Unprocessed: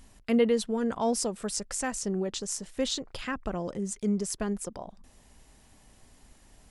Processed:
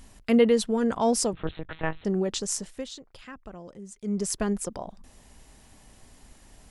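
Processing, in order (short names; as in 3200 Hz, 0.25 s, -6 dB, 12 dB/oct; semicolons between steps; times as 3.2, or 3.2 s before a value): 1.33–2.05 monotone LPC vocoder at 8 kHz 160 Hz; 2.6–4.26 dip -14 dB, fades 0.25 s; gain +4 dB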